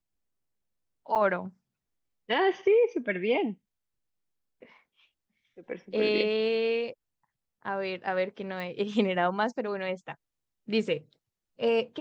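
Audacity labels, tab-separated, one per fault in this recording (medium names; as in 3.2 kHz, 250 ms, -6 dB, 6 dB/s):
1.150000	1.160000	dropout 7.8 ms
8.600000	8.600000	pop -25 dBFS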